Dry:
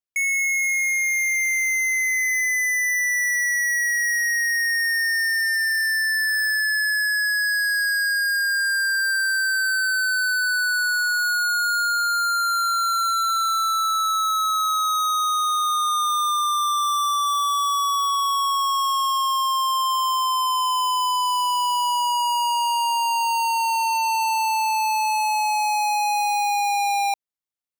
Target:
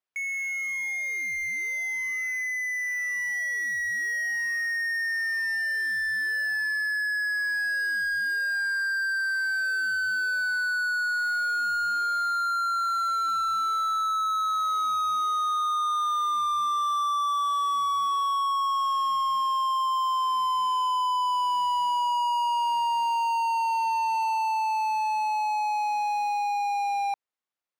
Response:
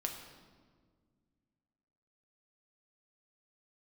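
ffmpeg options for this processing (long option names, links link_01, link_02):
-filter_complex "[0:a]dynaudnorm=framelen=230:gausssize=31:maxgain=4dB,asplit=2[link_01][link_02];[link_02]highpass=frequency=720:poles=1,volume=21dB,asoftclip=type=tanh:threshold=-17dB[link_03];[link_01][link_03]amix=inputs=2:normalize=0,lowpass=frequency=1400:poles=1,volume=-6dB,volume=-5.5dB"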